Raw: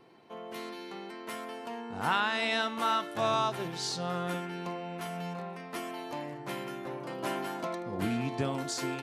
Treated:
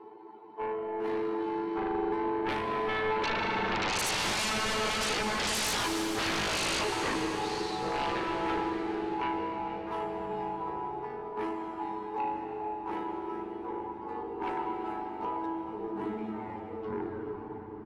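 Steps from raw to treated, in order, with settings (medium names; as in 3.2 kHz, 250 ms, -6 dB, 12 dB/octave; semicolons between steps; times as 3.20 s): tape stop on the ending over 0.88 s; Doppler pass-by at 2.46 s, 8 m/s, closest 2.4 m; reverb removal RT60 0.92 s; in parallel at -1 dB: compression, threshold -48 dBFS, peak gain reduction 18 dB; on the sum: peak limiter -29 dBFS, peak gain reduction 9 dB; hard clipper -32.5 dBFS, distortion -19 dB; granular stretch 1.9×, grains 37 ms; two resonant band-passes 620 Hz, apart 1.1 oct; sine folder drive 20 dB, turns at -36.5 dBFS; frequency-shifting echo 425 ms, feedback 44%, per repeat -130 Hz, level -16 dB; reverberation RT60 4.4 s, pre-delay 114 ms, DRR 3.5 dB; speed mistake 25 fps video run at 24 fps; trim +7.5 dB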